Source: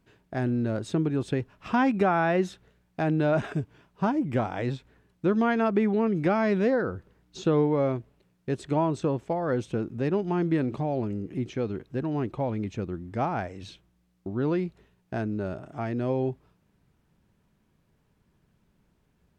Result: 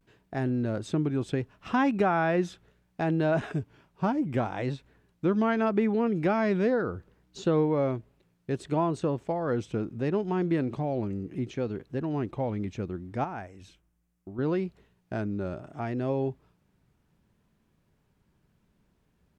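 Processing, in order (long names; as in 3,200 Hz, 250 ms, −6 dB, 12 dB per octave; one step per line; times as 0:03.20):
0:13.24–0:14.38: graphic EQ with 10 bands 125 Hz −8 dB, 250 Hz −4 dB, 500 Hz −6 dB, 1,000 Hz −4 dB, 2,000 Hz −3 dB, 4,000 Hz −10 dB
pitch vibrato 0.7 Hz 66 cents
level −1.5 dB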